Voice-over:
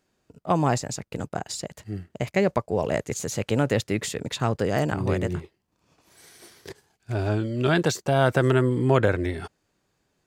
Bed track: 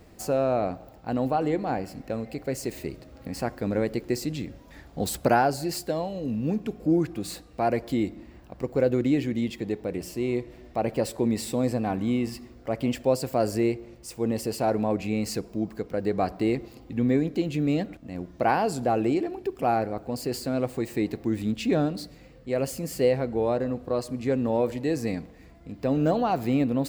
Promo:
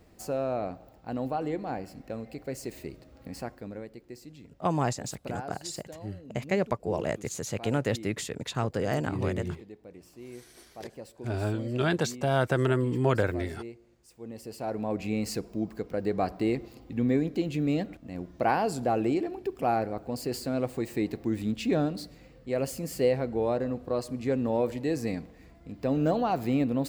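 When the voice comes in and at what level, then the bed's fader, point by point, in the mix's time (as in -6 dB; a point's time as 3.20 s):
4.15 s, -5.0 dB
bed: 3.35 s -6 dB
3.93 s -17.5 dB
14.13 s -17.5 dB
15.07 s -2.5 dB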